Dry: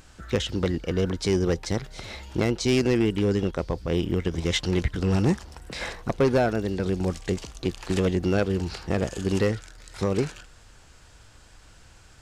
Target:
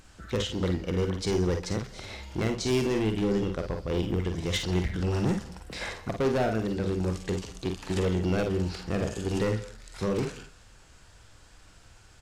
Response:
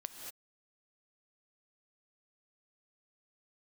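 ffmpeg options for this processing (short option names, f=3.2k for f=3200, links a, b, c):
-filter_complex "[0:a]asoftclip=type=hard:threshold=-19.5dB,aecho=1:1:45|55:0.398|0.376,asplit=2[a][b];[1:a]atrim=start_sample=2205,atrim=end_sample=6615,asetrate=29547,aresample=44100[c];[b][c]afir=irnorm=-1:irlink=0,volume=-4dB[d];[a][d]amix=inputs=2:normalize=0,volume=-7dB"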